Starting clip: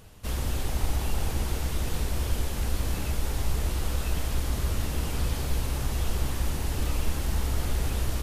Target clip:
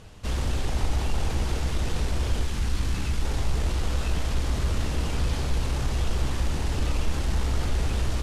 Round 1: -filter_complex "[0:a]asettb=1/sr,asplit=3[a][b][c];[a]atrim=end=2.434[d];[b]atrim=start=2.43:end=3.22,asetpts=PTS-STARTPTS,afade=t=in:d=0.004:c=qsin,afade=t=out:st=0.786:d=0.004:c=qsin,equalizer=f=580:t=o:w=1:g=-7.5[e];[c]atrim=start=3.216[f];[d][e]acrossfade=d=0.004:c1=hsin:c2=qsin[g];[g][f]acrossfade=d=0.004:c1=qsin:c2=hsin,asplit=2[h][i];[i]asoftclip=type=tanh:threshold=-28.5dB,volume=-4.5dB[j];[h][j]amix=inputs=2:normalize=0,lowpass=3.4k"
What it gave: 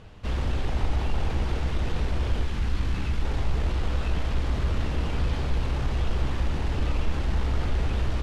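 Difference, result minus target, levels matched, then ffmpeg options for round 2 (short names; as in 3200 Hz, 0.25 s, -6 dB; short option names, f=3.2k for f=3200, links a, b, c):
8000 Hz band -10.5 dB
-filter_complex "[0:a]asettb=1/sr,asplit=3[a][b][c];[a]atrim=end=2.434[d];[b]atrim=start=2.43:end=3.22,asetpts=PTS-STARTPTS,afade=t=in:d=0.004:c=qsin,afade=t=out:st=0.786:d=0.004:c=qsin,equalizer=f=580:t=o:w=1:g=-7.5[e];[c]atrim=start=3.216[f];[d][e]acrossfade=d=0.004:c1=hsin:c2=qsin[g];[g][f]acrossfade=d=0.004:c1=qsin:c2=hsin,asplit=2[h][i];[i]asoftclip=type=tanh:threshold=-28.5dB,volume=-4.5dB[j];[h][j]amix=inputs=2:normalize=0,lowpass=7.2k"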